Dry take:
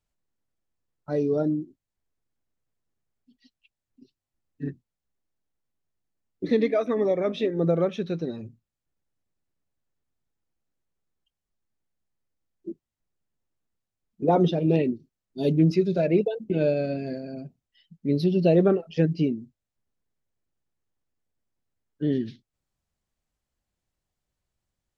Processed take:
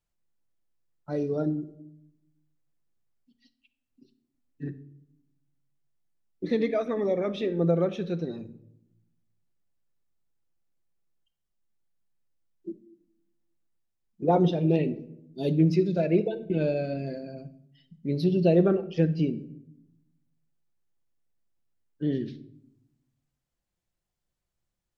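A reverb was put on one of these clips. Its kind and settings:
rectangular room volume 2,100 cubic metres, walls furnished, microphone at 0.82 metres
level −3 dB

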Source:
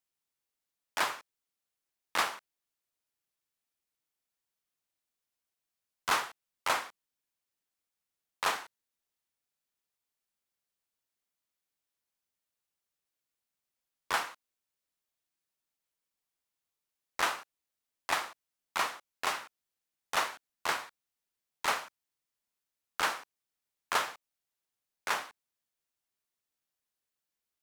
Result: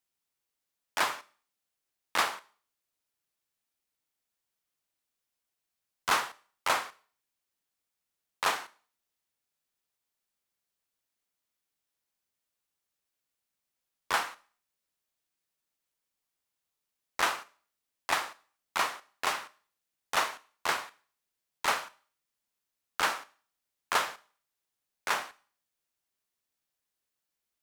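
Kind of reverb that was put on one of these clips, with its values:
four-comb reverb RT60 0.44 s, combs from 29 ms, DRR 17.5 dB
level +2 dB

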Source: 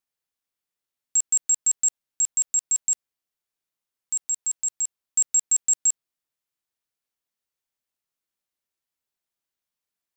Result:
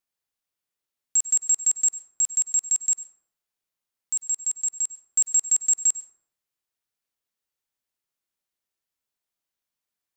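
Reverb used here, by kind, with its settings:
dense smooth reverb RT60 0.72 s, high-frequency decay 0.45×, pre-delay 85 ms, DRR 14.5 dB

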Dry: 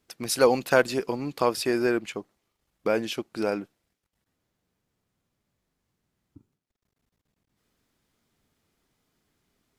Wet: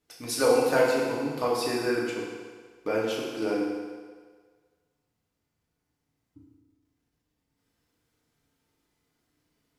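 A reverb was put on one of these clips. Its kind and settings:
feedback delay network reverb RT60 1.6 s, low-frequency decay 0.8×, high-frequency decay 0.9×, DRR −5 dB
level −7.5 dB

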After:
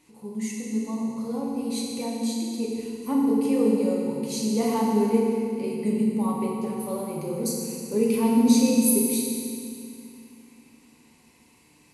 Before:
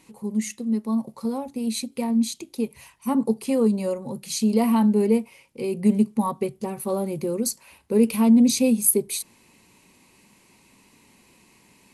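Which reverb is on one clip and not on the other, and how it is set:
feedback delay network reverb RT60 2.4 s, low-frequency decay 1.35×, high-frequency decay 0.95×, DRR −3.5 dB
level −7 dB

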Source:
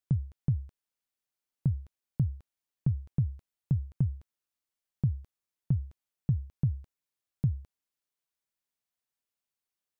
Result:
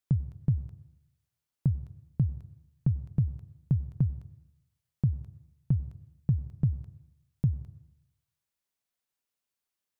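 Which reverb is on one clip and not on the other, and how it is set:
dense smooth reverb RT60 0.83 s, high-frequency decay 0.75×, pre-delay 85 ms, DRR 15.5 dB
level +1.5 dB

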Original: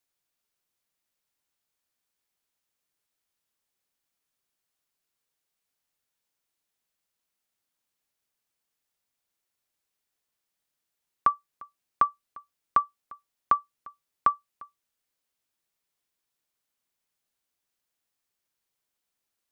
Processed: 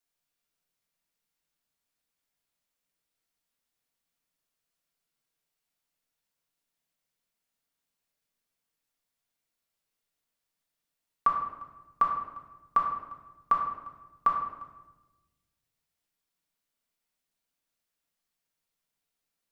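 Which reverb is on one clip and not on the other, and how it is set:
rectangular room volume 560 cubic metres, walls mixed, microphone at 1.7 metres
level −5 dB

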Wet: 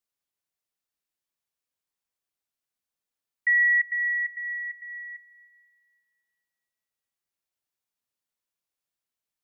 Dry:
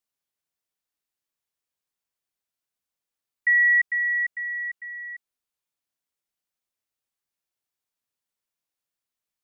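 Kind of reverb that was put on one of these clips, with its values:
comb and all-pass reverb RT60 2.6 s, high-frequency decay 0.5×, pre-delay 95 ms, DRR 18.5 dB
level −2 dB

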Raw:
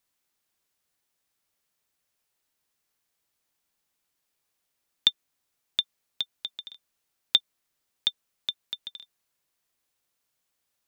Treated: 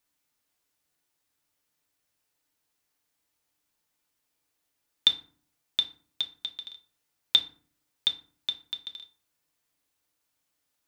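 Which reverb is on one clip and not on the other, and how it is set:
feedback delay network reverb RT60 0.45 s, low-frequency decay 1.55×, high-frequency decay 0.6×, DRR 4 dB
level −1 dB

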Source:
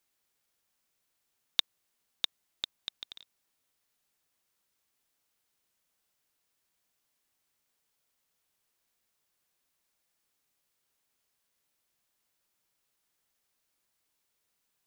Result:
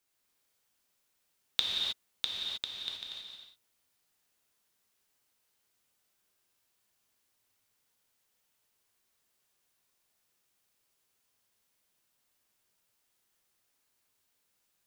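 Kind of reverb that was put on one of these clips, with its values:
reverb whose tail is shaped and stops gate 340 ms flat, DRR −3 dB
level −2.5 dB

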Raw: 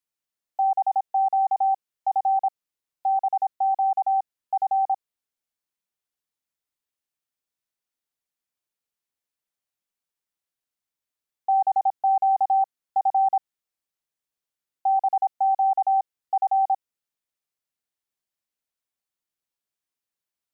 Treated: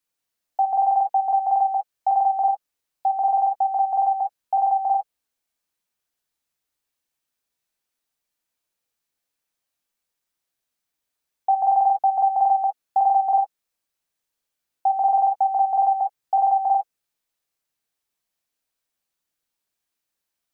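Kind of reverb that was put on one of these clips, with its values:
reverb whose tail is shaped and stops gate 90 ms flat, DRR 2.5 dB
level +4.5 dB

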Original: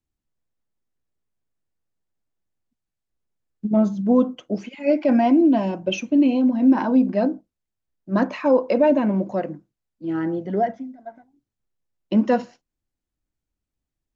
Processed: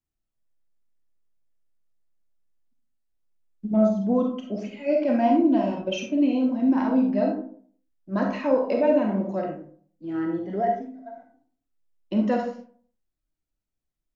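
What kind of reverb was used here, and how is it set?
comb and all-pass reverb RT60 0.52 s, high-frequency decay 0.5×, pre-delay 5 ms, DRR 1 dB
level −6 dB

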